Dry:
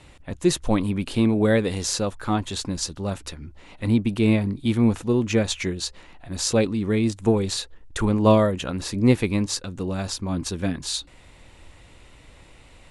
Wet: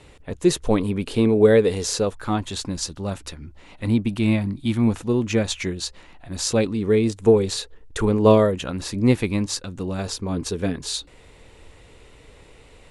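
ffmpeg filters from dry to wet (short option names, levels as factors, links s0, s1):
-af "asetnsamples=n=441:p=0,asendcmd='2.14 equalizer g -0.5;4.08 equalizer g -11.5;4.87 equalizer g 0;6.75 equalizer g 9;8.54 equalizer g -0.5;9.99 equalizer g 11.5',equalizer=f=440:t=o:w=0.32:g=10.5"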